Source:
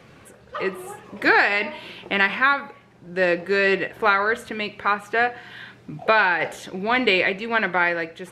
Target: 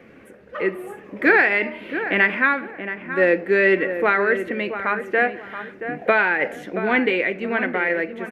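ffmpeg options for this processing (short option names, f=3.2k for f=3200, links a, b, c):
-filter_complex "[0:a]equalizer=f=125:t=o:w=1:g=-8,equalizer=f=250:t=o:w=1:g=9,equalizer=f=500:t=o:w=1:g=5,equalizer=f=1k:t=o:w=1:g=-5,equalizer=f=2k:t=o:w=1:g=8,equalizer=f=4k:t=o:w=1:g=-9,equalizer=f=8k:t=o:w=1:g=-8,asettb=1/sr,asplit=3[a][b][c];[a]atrim=end=6.984[d];[b]atrim=start=6.98:end=7.9,asetpts=PTS-STARTPTS,afade=t=in:d=0.004:c=qsin,afade=t=out:st=0.916:d=0.004:c=qsin,acompressor=threshold=-22dB:ratio=1.5[e];[c]atrim=start=7.896[f];[d][e]acrossfade=d=0.004:c1=hsin:c2=qsin[g];[g][f]acrossfade=d=0.004:c1=qsin:c2=hsin,asplit=2[h][i];[i]adelay=677,lowpass=f=1.7k:p=1,volume=-9dB,asplit=2[j][k];[k]adelay=677,lowpass=f=1.7k:p=1,volume=0.3,asplit=2[l][m];[m]adelay=677,lowpass=f=1.7k:p=1,volume=0.3[n];[j][l][n]amix=inputs=3:normalize=0[o];[h][o]amix=inputs=2:normalize=0,volume=-2dB"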